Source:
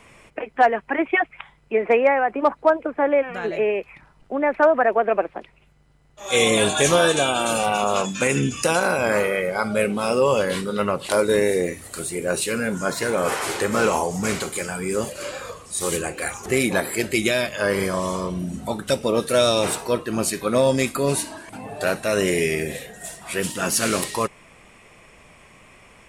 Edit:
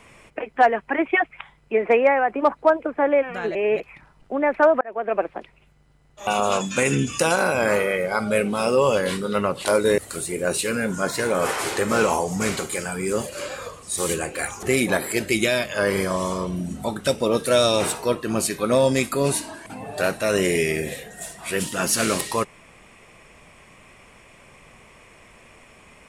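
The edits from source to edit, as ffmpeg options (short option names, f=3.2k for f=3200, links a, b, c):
-filter_complex "[0:a]asplit=6[a][b][c][d][e][f];[a]atrim=end=3.552[g];[b]atrim=start=3.548:end=3.802,asetpts=PTS-STARTPTS,areverse[h];[c]atrim=start=3.798:end=4.81,asetpts=PTS-STARTPTS,afade=t=out:st=1.008:d=0.004:c=hsin[i];[d]atrim=start=4.81:end=6.272,asetpts=PTS-STARTPTS,afade=t=in:d=0.44[j];[e]atrim=start=7.708:end=11.422[k];[f]atrim=start=11.808[l];[g][h]acrossfade=d=0.004:c1=hsin:c2=hsin[m];[i][j]concat=n=2:v=0:a=1[n];[m][n]acrossfade=d=0.004:c1=hsin:c2=hsin[o];[o][k]acrossfade=d=0.004:c1=hsin:c2=hsin[p];[p][l]acrossfade=d=0.004:c1=hsin:c2=hsin"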